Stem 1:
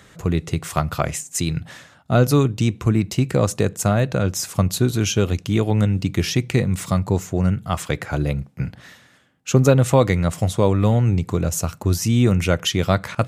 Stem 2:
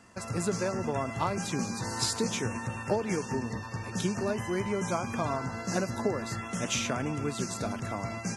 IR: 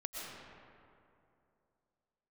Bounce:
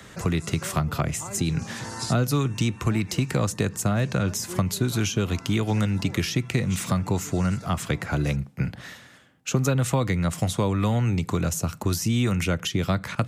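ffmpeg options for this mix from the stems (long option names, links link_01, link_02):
-filter_complex "[0:a]volume=3dB,asplit=2[link_01][link_02];[1:a]volume=-0.5dB[link_03];[link_02]apad=whole_len=368846[link_04];[link_03][link_04]sidechaincompress=threshold=-18dB:ratio=8:attack=11:release=639[link_05];[link_01][link_05]amix=inputs=2:normalize=0,acrossover=split=130|360|780[link_06][link_07][link_08][link_09];[link_06]acompressor=threshold=-31dB:ratio=4[link_10];[link_07]acompressor=threshold=-25dB:ratio=4[link_11];[link_08]acompressor=threshold=-41dB:ratio=4[link_12];[link_09]acompressor=threshold=-29dB:ratio=4[link_13];[link_10][link_11][link_12][link_13]amix=inputs=4:normalize=0"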